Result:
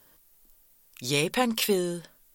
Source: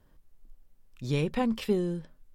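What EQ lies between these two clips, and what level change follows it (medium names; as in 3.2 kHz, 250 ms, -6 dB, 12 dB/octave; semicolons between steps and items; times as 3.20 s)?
RIAA curve recording; +6.5 dB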